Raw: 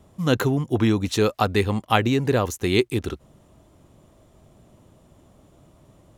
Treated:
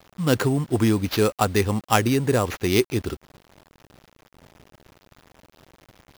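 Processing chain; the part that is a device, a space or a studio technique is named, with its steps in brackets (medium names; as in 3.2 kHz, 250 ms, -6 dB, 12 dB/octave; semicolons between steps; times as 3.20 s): early 8-bit sampler (sample-rate reducer 8.5 kHz, jitter 0%; bit crusher 8-bit)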